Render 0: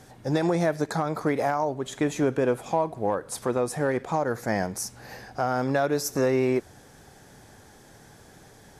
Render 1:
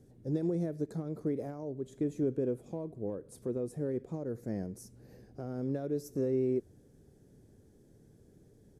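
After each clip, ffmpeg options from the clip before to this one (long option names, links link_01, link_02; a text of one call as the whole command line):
ffmpeg -i in.wav -af "firequalizer=gain_entry='entry(410,0);entry(810,-21);entry(9100,-12)':delay=0.05:min_phase=1,volume=-6.5dB" out.wav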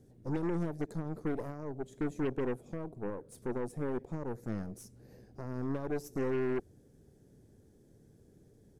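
ffmpeg -i in.wav -af "aeval=exprs='0.0841*(cos(1*acos(clip(val(0)/0.0841,-1,1)))-cos(1*PI/2))+0.00473*(cos(5*acos(clip(val(0)/0.0841,-1,1)))-cos(5*PI/2))+0.0119*(cos(8*acos(clip(val(0)/0.0841,-1,1)))-cos(8*PI/2))':channel_layout=same,volume=-3dB" out.wav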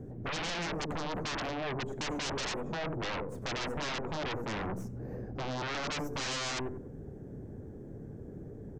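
ffmpeg -i in.wav -filter_complex "[0:a]asplit=2[link_01][link_02];[link_02]adelay=93,lowpass=frequency=2100:poles=1,volume=-16dB,asplit=2[link_03][link_04];[link_04]adelay=93,lowpass=frequency=2100:poles=1,volume=0.29,asplit=2[link_05][link_06];[link_06]adelay=93,lowpass=frequency=2100:poles=1,volume=0.29[link_07];[link_01][link_03][link_05][link_07]amix=inputs=4:normalize=0,acrossover=split=1800[link_08][link_09];[link_08]aeval=exprs='0.0562*sin(PI/2*10*val(0)/0.0562)':channel_layout=same[link_10];[link_10][link_09]amix=inputs=2:normalize=0,aexciter=amount=1.5:drive=3.3:freq=6000,volume=-7.5dB" out.wav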